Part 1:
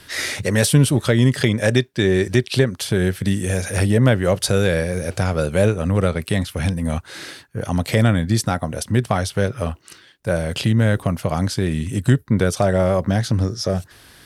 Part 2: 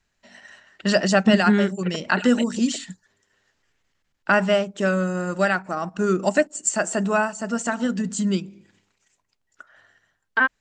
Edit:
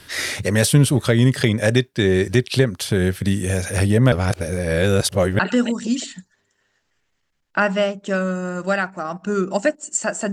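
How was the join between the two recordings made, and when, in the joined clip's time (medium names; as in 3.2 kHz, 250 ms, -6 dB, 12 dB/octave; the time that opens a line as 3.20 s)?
part 1
4.12–5.39 s: reverse
5.39 s: go over to part 2 from 2.11 s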